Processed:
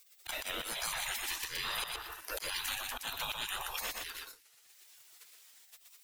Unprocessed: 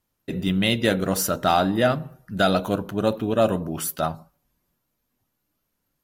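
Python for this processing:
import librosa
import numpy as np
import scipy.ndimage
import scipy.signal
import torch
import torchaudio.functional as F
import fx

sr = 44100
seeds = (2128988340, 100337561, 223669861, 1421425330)

p1 = fx.spec_gate(x, sr, threshold_db=-30, keep='weak')
p2 = fx.over_compress(p1, sr, threshold_db=-50.0, ratio=-1.0)
p3 = p1 + F.gain(torch.from_numpy(p2), -2.0).numpy()
p4 = fx.auto_swell(p3, sr, attack_ms=336.0)
p5 = fx.leveller(p4, sr, passes=2)
p6 = p5 + 10.0 ** (-5.5 / 20.0) * np.pad(p5, (int(121 * sr / 1000.0), 0))[:len(p5)]
y = fx.band_squash(p6, sr, depth_pct=100)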